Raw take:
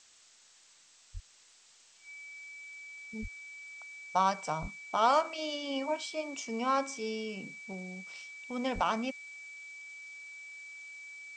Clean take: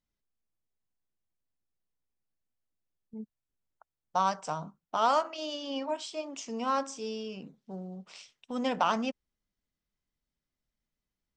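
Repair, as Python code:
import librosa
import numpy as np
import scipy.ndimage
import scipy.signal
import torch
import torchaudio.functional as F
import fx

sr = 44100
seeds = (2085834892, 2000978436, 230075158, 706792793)

y = fx.notch(x, sr, hz=2300.0, q=30.0)
y = fx.fix_deplosive(y, sr, at_s=(1.13, 3.21, 4.61, 8.74))
y = fx.noise_reduce(y, sr, print_start_s=0.6, print_end_s=1.1, reduce_db=27.0)
y = fx.gain(y, sr, db=fx.steps((0.0, 0.0), (7.73, 3.0)))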